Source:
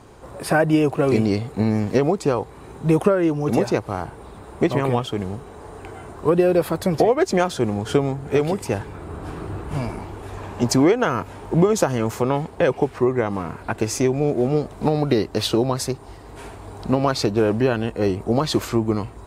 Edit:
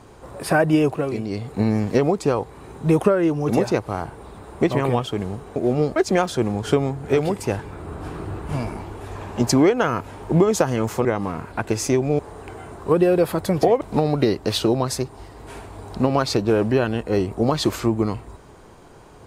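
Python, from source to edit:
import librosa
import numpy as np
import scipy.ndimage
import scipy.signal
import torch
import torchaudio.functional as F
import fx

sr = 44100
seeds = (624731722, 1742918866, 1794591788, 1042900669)

y = fx.edit(x, sr, fx.fade_down_up(start_s=0.87, length_s=0.66, db=-8.5, fade_s=0.24),
    fx.swap(start_s=5.56, length_s=1.62, other_s=14.3, other_length_s=0.4),
    fx.cut(start_s=12.27, length_s=0.89), tone=tone)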